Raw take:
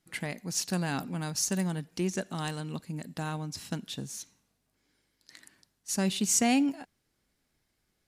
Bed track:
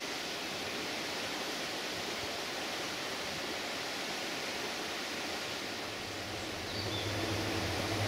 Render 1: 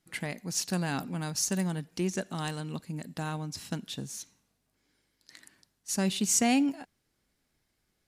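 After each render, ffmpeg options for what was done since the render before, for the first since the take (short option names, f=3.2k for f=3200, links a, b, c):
-af anull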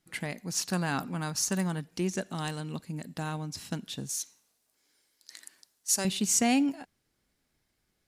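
-filter_complex "[0:a]asettb=1/sr,asplit=3[a][b][c];[a]atrim=end=0.534[d];[b]atrim=start=0.53:end=1.81,asetpts=PTS-STARTPTS,afade=t=in:d=0.004:c=qsin,afade=t=out:st=1.276:d=0.004:c=qsin,equalizer=f=1.2k:t=o:w=0.93:g=5.5[e];[c]atrim=start=1.806[f];[d][e]acrossfade=d=0.004:c1=hsin:c2=qsin[g];[g][f]acrossfade=d=0.004:c1=qsin:c2=hsin,asettb=1/sr,asplit=3[h][i][j];[h]atrim=end=4.094[k];[i]atrim=start=4.09:end=6.05,asetpts=PTS-STARTPTS,afade=t=in:d=0.004:c=qsin,afade=t=out:st=1.956:d=0.004:c=qsin,bass=f=250:g=-15,treble=f=4k:g=8[l];[j]atrim=start=6.046[m];[k][l]acrossfade=d=0.004:c1=hsin:c2=qsin[n];[n][m]acrossfade=d=0.004:c1=qsin:c2=hsin"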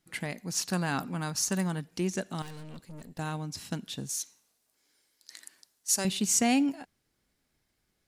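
-filter_complex "[0:a]asettb=1/sr,asplit=3[a][b][c];[a]atrim=end=2.424[d];[b]atrim=start=2.42:end=3.19,asetpts=PTS-STARTPTS,afade=t=in:d=0.004:c=qsin,afade=t=out:st=0.766:d=0.004:c=qsin,aeval=exprs='(tanh(126*val(0)+0.6)-tanh(0.6))/126':c=same[e];[c]atrim=start=3.186[f];[d][e]acrossfade=d=0.004:c1=hsin:c2=qsin[g];[g][f]acrossfade=d=0.004:c1=qsin:c2=hsin"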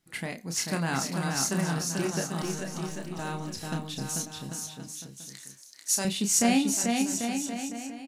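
-filter_complex "[0:a]asplit=2[a][b];[b]adelay=30,volume=-6dB[c];[a][c]amix=inputs=2:normalize=0,aecho=1:1:440|792|1074|1299|1479:0.631|0.398|0.251|0.158|0.1"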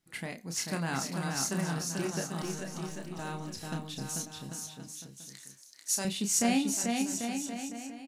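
-af "volume=-4dB"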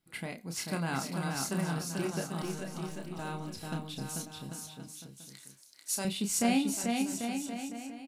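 -af "equalizer=f=6.3k:t=o:w=0.49:g=-7.5,bandreject=f=1.8k:w=9.9"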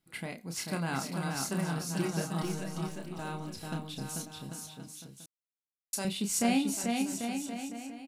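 -filter_complex "[0:a]asettb=1/sr,asplit=3[a][b][c];[a]atrim=end=1.884[d];[b]atrim=start=1.88:end=2.88,asetpts=PTS-STARTPTS,afade=t=in:d=0.004:c=qsin,afade=t=out:st=0.996:d=0.004:c=qsin,aecho=1:1:6.3:0.65,atrim=end_sample=44100[e];[c]atrim=start=2.876[f];[d][e]acrossfade=d=0.004:c1=hsin:c2=qsin[g];[g][f]acrossfade=d=0.004:c1=qsin:c2=hsin,asplit=3[h][i][j];[h]atrim=end=5.26,asetpts=PTS-STARTPTS,afade=t=out:st=5.256:d=0.004:c=hsin[k];[i]atrim=start=5.26:end=5.93,asetpts=PTS-STARTPTS,volume=0[l];[j]atrim=start=5.93,asetpts=PTS-STARTPTS,afade=t=in:d=0.004:c=hsin[m];[k][l][m]concat=n=3:v=0:a=1"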